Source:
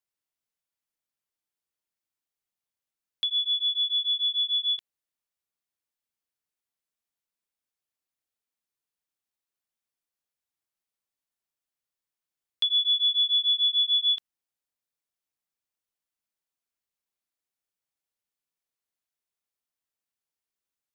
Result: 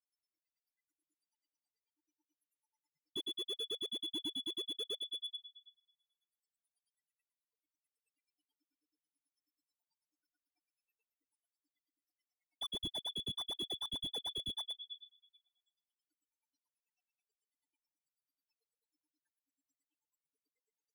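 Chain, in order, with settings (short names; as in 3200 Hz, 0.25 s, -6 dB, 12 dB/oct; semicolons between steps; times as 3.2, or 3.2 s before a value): FDN reverb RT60 1.4 s, low-frequency decay 0.9×, high-frequency decay 0.85×, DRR -6.5 dB; loudest bins only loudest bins 4; compressor 8:1, threshold -30 dBFS, peak gain reduction 16 dB; grains 62 ms, grains 9.2/s, pitch spread up and down by 0 st; rotary speaker horn 0.7 Hz, later 6.7 Hz, at 9.87; on a send: feedback echo 0.118 s, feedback 49%, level -18 dB; on the sum: vocal rider within 3 dB 0.5 s; slew limiter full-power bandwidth 10 Hz; gain +12.5 dB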